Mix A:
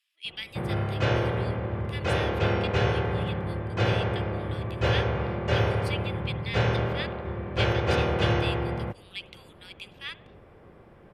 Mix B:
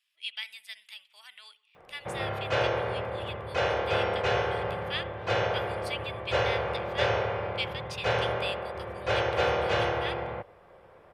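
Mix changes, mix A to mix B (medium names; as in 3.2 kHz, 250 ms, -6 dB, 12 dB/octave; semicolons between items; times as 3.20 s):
background: entry +1.50 s; master: add resonant low shelf 390 Hz -9.5 dB, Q 1.5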